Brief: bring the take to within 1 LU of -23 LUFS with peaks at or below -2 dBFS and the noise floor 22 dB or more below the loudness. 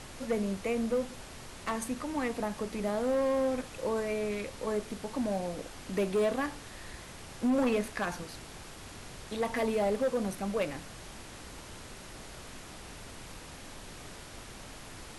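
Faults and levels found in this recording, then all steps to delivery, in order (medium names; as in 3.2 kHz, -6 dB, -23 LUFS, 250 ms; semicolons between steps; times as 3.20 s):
clipped samples 1.4%; clipping level -23.5 dBFS; noise floor -47 dBFS; noise floor target -55 dBFS; loudness -32.5 LUFS; peak level -23.5 dBFS; loudness target -23.0 LUFS
-> clip repair -23.5 dBFS; noise print and reduce 8 dB; trim +9.5 dB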